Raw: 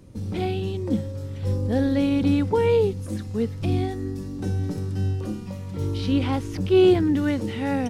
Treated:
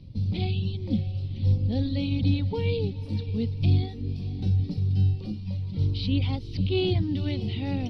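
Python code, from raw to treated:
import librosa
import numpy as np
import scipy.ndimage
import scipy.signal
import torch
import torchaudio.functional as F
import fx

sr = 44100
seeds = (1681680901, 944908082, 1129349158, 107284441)

p1 = fx.notch(x, sr, hz=6600.0, q=6.6)
p2 = fx.dereverb_blind(p1, sr, rt60_s=0.72)
p3 = fx.curve_eq(p2, sr, hz=(140.0, 370.0, 770.0, 1600.0, 2300.0, 4400.0, 7500.0), db=(0, -14, -14, -24, -8, 1, -28))
p4 = fx.rider(p3, sr, range_db=10, speed_s=2.0)
p5 = p3 + (p4 * librosa.db_to_amplitude(-1.0))
p6 = fx.echo_diffused(p5, sr, ms=548, feedback_pct=44, wet_db=-14.5)
y = p6 * librosa.db_to_amplitude(-1.5)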